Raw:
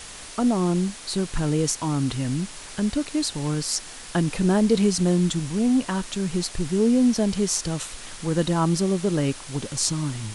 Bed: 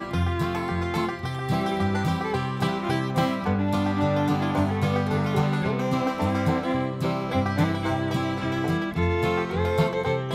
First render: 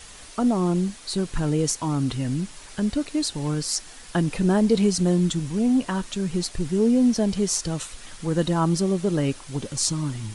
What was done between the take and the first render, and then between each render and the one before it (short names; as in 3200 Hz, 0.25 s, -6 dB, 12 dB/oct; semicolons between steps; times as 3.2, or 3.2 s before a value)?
denoiser 6 dB, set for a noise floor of -40 dBFS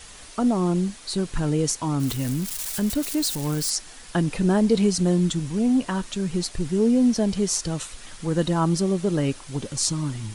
2–3.7 switching spikes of -24 dBFS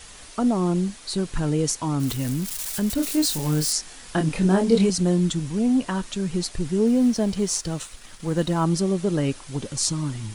2.95–4.9 doubler 26 ms -4 dB; 6.87–8.64 G.711 law mismatch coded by A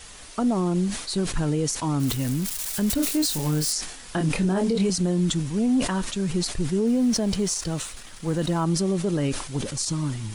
limiter -15.5 dBFS, peak gain reduction 10.5 dB; sustainer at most 76 dB/s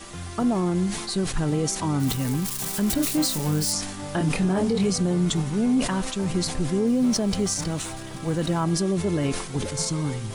add bed -12 dB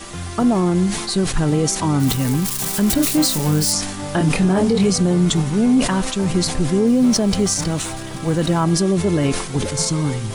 gain +6.5 dB